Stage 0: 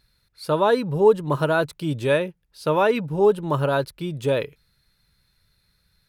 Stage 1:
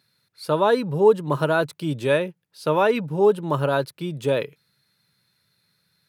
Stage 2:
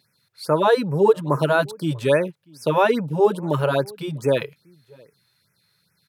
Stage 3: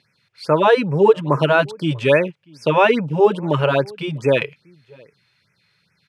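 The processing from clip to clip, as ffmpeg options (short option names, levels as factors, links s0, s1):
-af "highpass=f=120:w=0.5412,highpass=f=120:w=1.3066"
-filter_complex "[0:a]asplit=2[s0][s1];[s1]adelay=641.4,volume=0.0501,highshelf=f=4000:g=-14.4[s2];[s0][s2]amix=inputs=2:normalize=0,afftfilt=real='re*(1-between(b*sr/1024,210*pow(3800/210,0.5+0.5*sin(2*PI*2.4*pts/sr))/1.41,210*pow(3800/210,0.5+0.5*sin(2*PI*2.4*pts/sr))*1.41))':imag='im*(1-between(b*sr/1024,210*pow(3800/210,0.5+0.5*sin(2*PI*2.4*pts/sr))/1.41,210*pow(3800/210,0.5+0.5*sin(2*PI*2.4*pts/sr))*1.41))':win_size=1024:overlap=0.75,volume=1.33"
-af "lowpass=f=3600:t=q:w=1.6,aexciter=amount=1.1:drive=5.6:freq=2100,volume=1.41"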